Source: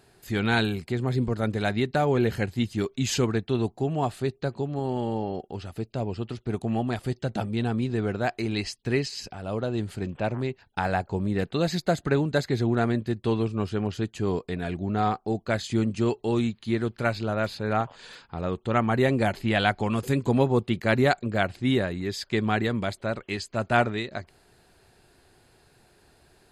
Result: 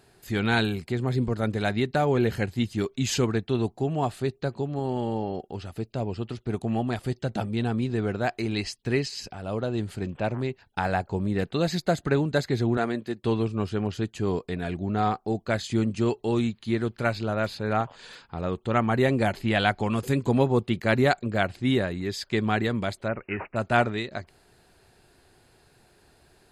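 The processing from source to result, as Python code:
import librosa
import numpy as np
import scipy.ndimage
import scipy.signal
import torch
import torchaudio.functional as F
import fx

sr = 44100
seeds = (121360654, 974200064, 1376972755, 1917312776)

y = fx.bessel_highpass(x, sr, hz=270.0, order=2, at=(12.77, 13.23))
y = fx.resample_bad(y, sr, factor=8, down='none', up='filtered', at=(23.08, 23.56))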